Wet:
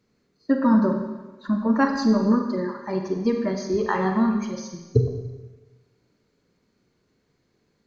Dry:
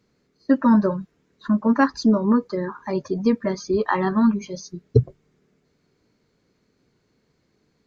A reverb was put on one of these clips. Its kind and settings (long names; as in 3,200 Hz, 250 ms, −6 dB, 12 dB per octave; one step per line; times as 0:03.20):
four-comb reverb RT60 1.2 s, combs from 32 ms, DRR 3.5 dB
level −3 dB